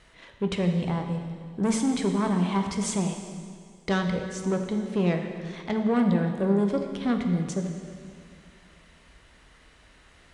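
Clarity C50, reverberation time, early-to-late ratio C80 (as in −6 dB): 5.5 dB, 2.1 s, 6.5 dB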